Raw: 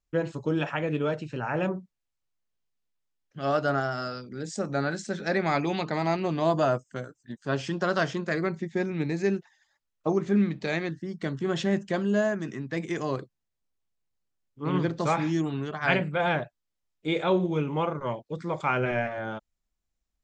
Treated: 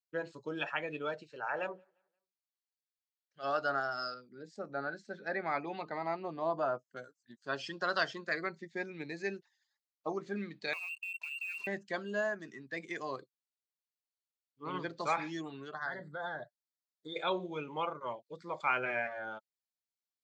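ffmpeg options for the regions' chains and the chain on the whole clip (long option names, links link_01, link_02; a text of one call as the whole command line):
ffmpeg -i in.wav -filter_complex "[0:a]asettb=1/sr,asplit=3[link_01][link_02][link_03];[link_01]atrim=end=1.234[link_04];[link_02]atrim=start=1.23:end=3.44,asetpts=PTS-STARTPTS,afade=type=in:duration=0.004:curve=qsin,afade=type=out:start_time=2.206:duration=0.004:curve=qsin,lowshelf=frequency=350:width_type=q:width=1.5:gain=-6,bandreject=frequency=2500:width=21,asplit=2[link_05][link_06];[link_06]adelay=175,lowpass=frequency=4000:poles=1,volume=-23.5dB,asplit=2[link_07][link_08];[link_08]adelay=175,lowpass=frequency=4000:poles=1,volume=0.44,asplit=2[link_09][link_10];[link_10]adelay=175,lowpass=frequency=4000:poles=1,volume=0.44[link_11];[link_05][link_07][link_09][link_11]amix=inputs=4:normalize=0,atrim=end_sample=97461[link_12];[link_03]atrim=start=3.436[link_13];[link_04][link_12]acrossfade=duration=0.004:curve1=hsin:curve2=qsin[link_14];[link_14][link_13]acrossfade=duration=0.004:curve1=qsin:curve2=hsin,asettb=1/sr,asplit=3[link_15][link_16][link_17];[link_15]atrim=end=4.144[link_18];[link_16]atrim=start=4.14:end=6.97,asetpts=PTS-STARTPTS,afade=type=in:duration=0.004:curve=qsin,afade=type=out:start_time=2.826:duration=0.004:curve=qsin,lowpass=frequency=3200:poles=1,highshelf=frequency=2500:gain=-8[link_19];[link_17]atrim=start=6.966[link_20];[link_18][link_19]acrossfade=duration=0.004:curve1=hsin:curve2=qsin[link_21];[link_21][link_20]acrossfade=duration=0.004:curve1=qsin:curve2=hsin,asettb=1/sr,asplit=3[link_22][link_23][link_24];[link_22]atrim=end=10.734[link_25];[link_23]atrim=start=10.73:end=11.67,asetpts=PTS-STARTPTS,afade=type=in:duration=0.004:curve=qsin,afade=type=out:start_time=0.936:duration=0.004:curve=qsin,lowpass=frequency=2500:width_type=q:width=0.5098,lowpass=frequency=2500:width_type=q:width=0.6013,lowpass=frequency=2500:width_type=q:width=0.9,lowpass=frequency=2500:width_type=q:width=2.563,afreqshift=-2900,acompressor=threshold=-35dB:ratio=16:attack=3.2:release=140:knee=1:detection=peak,acrusher=bits=6:mix=0:aa=0.5[link_26];[link_24]atrim=start=11.666[link_27];[link_25][link_26]acrossfade=duration=0.004:curve1=hsin:curve2=qsin[link_28];[link_28][link_27]acrossfade=duration=0.004:curve1=qsin:curve2=hsin,asettb=1/sr,asplit=3[link_29][link_30][link_31];[link_29]atrim=end=15.744[link_32];[link_30]atrim=start=15.74:end=17.16,asetpts=PTS-STARTPTS,afade=type=in:duration=0.004:curve=qsin,afade=type=out:start_time=1.416:duration=0.004:curve=qsin,lowshelf=frequency=130:gain=7,acompressor=threshold=-27dB:ratio=10:attack=3.2:release=140:knee=1:detection=peak,asuperstop=centerf=2600:order=12:qfactor=2.1[link_33];[link_31]atrim=start=17.156[link_34];[link_32][link_33]acrossfade=duration=0.004:curve1=hsin:curve2=qsin[link_35];[link_35][link_34]acrossfade=duration=0.004:curve1=qsin:curve2=hsin,afftdn=noise_reduction=12:noise_floor=-36,highpass=frequency=1500:poles=1,equalizer=frequency=4400:width_type=o:width=0.38:gain=8.5" out.wav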